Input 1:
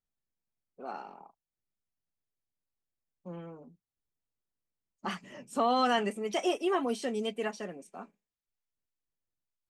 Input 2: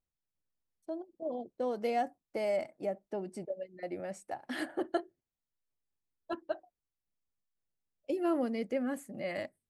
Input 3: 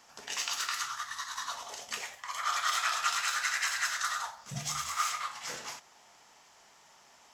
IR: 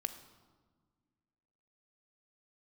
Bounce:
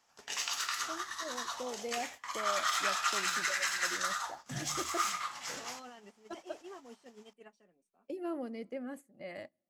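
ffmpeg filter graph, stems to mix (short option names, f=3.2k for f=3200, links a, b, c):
-filter_complex "[0:a]alimiter=limit=-23.5dB:level=0:latency=1:release=56,volume=-17dB[a];[1:a]volume=-8.5dB,asplit=2[b][c];[c]volume=-16.5dB[d];[2:a]volume=-3dB,asplit=2[e][f];[f]volume=-14dB[g];[3:a]atrim=start_sample=2205[h];[d][g]amix=inputs=2:normalize=0[i];[i][h]afir=irnorm=-1:irlink=0[j];[a][b][e][j]amix=inputs=4:normalize=0,agate=range=-11dB:threshold=-48dB:ratio=16:detection=peak"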